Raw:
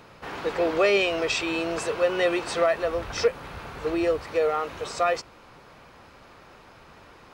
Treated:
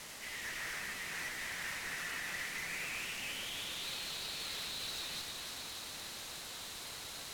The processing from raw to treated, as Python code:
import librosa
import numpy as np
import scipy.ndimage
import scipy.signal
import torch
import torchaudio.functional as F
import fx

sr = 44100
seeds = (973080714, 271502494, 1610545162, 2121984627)

y = scipy.ndimage.median_filter(x, 9, mode='constant')
y = scipy.signal.sosfilt(scipy.signal.butter(2, 300.0, 'highpass', fs=sr, output='sos'), y)
y = fx.spec_gate(y, sr, threshold_db=-15, keep='weak')
y = fx.tilt_eq(y, sr, slope=4.5)
y = fx.over_compress(y, sr, threshold_db=-36.0, ratio=-1.0)
y = fx.filter_sweep_bandpass(y, sr, from_hz=1900.0, to_hz=4000.0, start_s=2.4, end_s=3.95, q=7.6)
y = fx.tube_stage(y, sr, drive_db=53.0, bias=0.6)
y = fx.quant_dither(y, sr, seeds[0], bits=10, dither='triangular')
y = fx.echo_alternate(y, sr, ms=148, hz=2100.0, feedback_pct=82, wet_db=-4)
y = np.interp(np.arange(len(y)), np.arange(len(y))[::2], y[::2])
y = y * librosa.db_to_amplitude(12.0)